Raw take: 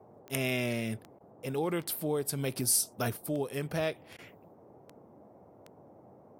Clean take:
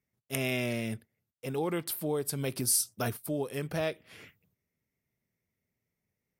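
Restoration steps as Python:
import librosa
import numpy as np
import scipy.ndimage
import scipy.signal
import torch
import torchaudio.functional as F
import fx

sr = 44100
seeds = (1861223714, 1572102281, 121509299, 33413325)

y = fx.fix_declip(x, sr, threshold_db=-17.0)
y = fx.fix_declick_ar(y, sr, threshold=10.0)
y = fx.fix_interpolate(y, sr, at_s=(1.19, 4.17), length_ms=14.0)
y = fx.noise_reduce(y, sr, print_start_s=4.38, print_end_s=4.88, reduce_db=29.0)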